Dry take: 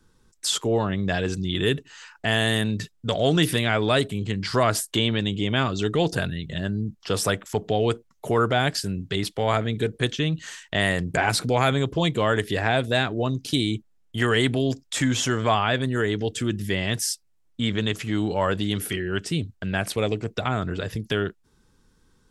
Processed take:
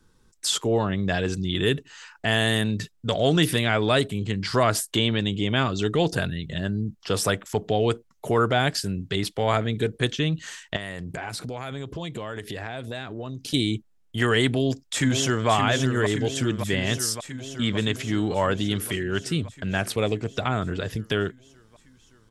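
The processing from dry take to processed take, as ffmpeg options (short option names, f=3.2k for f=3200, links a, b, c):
-filter_complex "[0:a]asettb=1/sr,asplit=3[a][b][c];[a]atrim=end=10.764[d];[b]atrim=start=10.76:end=13.54,asetpts=PTS-STARTPTS,afade=t=in:d=0.004:c=qsin,afade=t=out:st=2.776:d=0.004:c=qsin,acompressor=threshold=-30dB:ratio=5:attack=3.2:release=140:knee=1:detection=peak[e];[c]atrim=start=13.536[f];[d][e]acrossfade=d=0.004:c1=hsin:c2=qsin[g];[g][f]acrossfade=d=0.004:c1=qsin:c2=hsin,asplit=2[h][i];[i]afade=t=in:st=14.45:d=0.01,afade=t=out:st=15.49:d=0.01,aecho=0:1:570|1140|1710|2280|2850|3420|3990|4560|5130|5700|6270|6840:0.446684|0.335013|0.25126|0.188445|0.141333|0.106|0.0795001|0.0596251|0.0447188|0.0335391|0.0251543|0.0188657[j];[h][j]amix=inputs=2:normalize=0"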